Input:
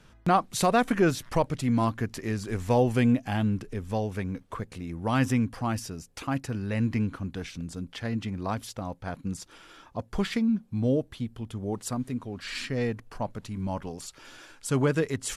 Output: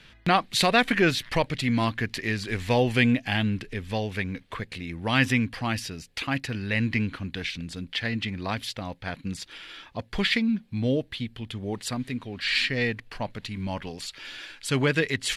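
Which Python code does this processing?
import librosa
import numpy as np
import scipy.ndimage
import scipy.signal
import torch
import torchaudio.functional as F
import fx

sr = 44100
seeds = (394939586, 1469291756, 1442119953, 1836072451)

y = fx.band_shelf(x, sr, hz=2800.0, db=12.0, octaves=1.7)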